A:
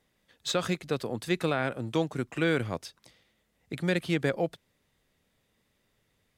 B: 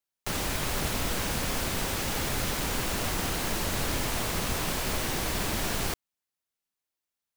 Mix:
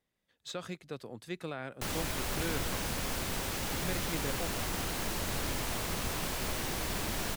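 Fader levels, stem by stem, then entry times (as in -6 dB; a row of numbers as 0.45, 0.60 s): -11.5, -5.0 dB; 0.00, 1.55 s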